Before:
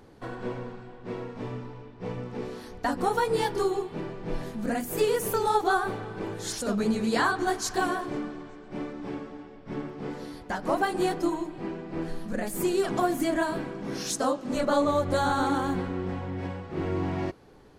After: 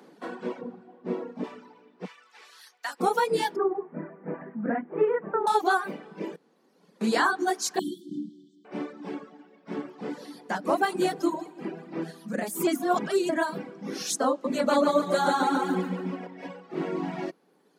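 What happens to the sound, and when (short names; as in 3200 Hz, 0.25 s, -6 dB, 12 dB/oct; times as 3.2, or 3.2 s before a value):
0.61–1.44 tilt shelf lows +5.5 dB
2.05–3 HPF 1500 Hz
3.56–5.47 steep low-pass 2000 Hz
6.36–7.01 room tone
7.79–8.65 brick-wall FIR band-stop 380–3000 Hz
9.35–11.94 split-band echo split 760 Hz, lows 0.323 s, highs 0.189 s, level -12 dB
12.67–13.29 reverse
14.3–16.27 feedback echo 0.141 s, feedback 51%, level -3 dB
whole clip: steep high-pass 160 Hz 72 dB/oct; reverb removal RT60 1.6 s; gain +2 dB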